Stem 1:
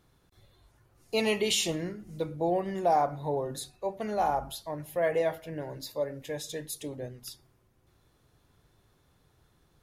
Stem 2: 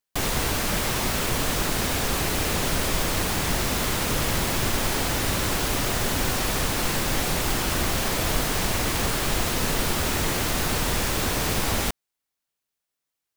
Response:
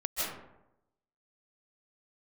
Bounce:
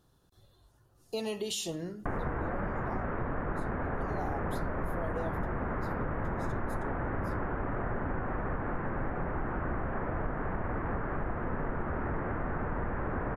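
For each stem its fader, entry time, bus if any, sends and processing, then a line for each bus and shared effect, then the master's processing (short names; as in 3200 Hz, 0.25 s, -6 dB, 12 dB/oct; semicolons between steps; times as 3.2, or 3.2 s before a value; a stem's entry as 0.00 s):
2.33 s -1.5 dB -> 2.95 s -13.5 dB -> 3.78 s -13.5 dB -> 3.99 s -2 dB -> 5.34 s -2 dB -> 5.85 s -10 dB, 0.00 s, no send, bell 2200 Hz -14.5 dB 0.37 oct
+2.5 dB, 1.90 s, no send, steep low-pass 1700 Hz 36 dB/oct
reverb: off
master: compressor 3:1, threshold -33 dBFS, peak gain reduction 12.5 dB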